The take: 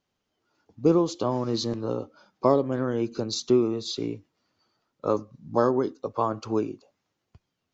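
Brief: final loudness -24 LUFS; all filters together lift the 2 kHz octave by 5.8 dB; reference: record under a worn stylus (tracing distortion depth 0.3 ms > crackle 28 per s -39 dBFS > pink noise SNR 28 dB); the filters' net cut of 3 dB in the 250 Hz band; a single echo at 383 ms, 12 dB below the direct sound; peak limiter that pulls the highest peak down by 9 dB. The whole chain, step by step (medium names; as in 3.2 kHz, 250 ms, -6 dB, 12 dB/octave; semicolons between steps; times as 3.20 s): peaking EQ 250 Hz -4.5 dB; peaking EQ 2 kHz +8.5 dB; peak limiter -17.5 dBFS; delay 383 ms -12 dB; tracing distortion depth 0.3 ms; crackle 28 per s -39 dBFS; pink noise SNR 28 dB; trim +6.5 dB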